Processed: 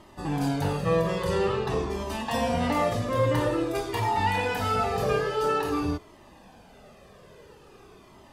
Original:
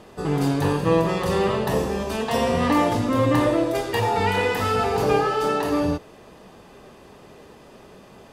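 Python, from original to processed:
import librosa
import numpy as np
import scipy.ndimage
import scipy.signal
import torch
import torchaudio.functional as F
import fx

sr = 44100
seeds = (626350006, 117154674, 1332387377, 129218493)

y = fx.lowpass(x, sr, hz=fx.line((1.26, 12000.0), (1.89, 4900.0)), slope=12, at=(1.26, 1.89), fade=0.02)
y = fx.comb_cascade(y, sr, direction='falling', hz=0.49)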